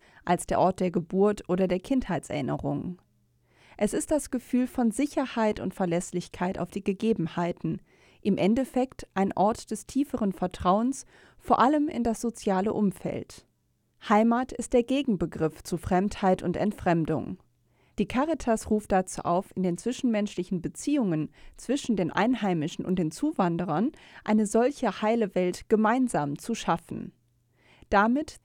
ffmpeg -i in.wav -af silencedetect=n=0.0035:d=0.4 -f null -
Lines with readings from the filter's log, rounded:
silence_start: 2.99
silence_end: 3.61 | silence_duration: 0.62
silence_start: 13.41
silence_end: 14.01 | silence_duration: 0.61
silence_start: 17.40
silence_end: 17.98 | silence_duration: 0.58
silence_start: 27.10
silence_end: 27.66 | silence_duration: 0.56